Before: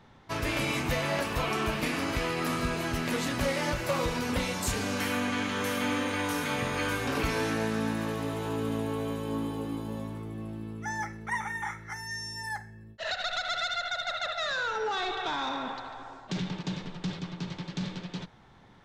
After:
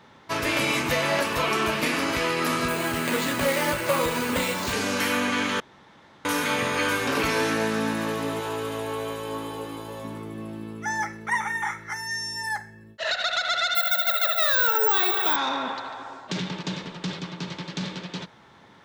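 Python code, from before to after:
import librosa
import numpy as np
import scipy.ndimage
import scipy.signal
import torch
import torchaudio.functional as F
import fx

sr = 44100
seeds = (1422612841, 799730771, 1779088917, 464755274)

y = fx.resample_bad(x, sr, factor=4, down='filtered', up='hold', at=(2.68, 4.73))
y = fx.peak_eq(y, sr, hz=220.0, db=-13.5, octaves=0.81, at=(8.4, 10.04))
y = fx.resample_bad(y, sr, factor=2, down='filtered', up='zero_stuff', at=(13.75, 15.36))
y = fx.edit(y, sr, fx.room_tone_fill(start_s=5.6, length_s=0.65), tone=tone)
y = fx.highpass(y, sr, hz=280.0, slope=6)
y = fx.notch(y, sr, hz=750.0, q=12.0)
y = y * librosa.db_to_amplitude(7.0)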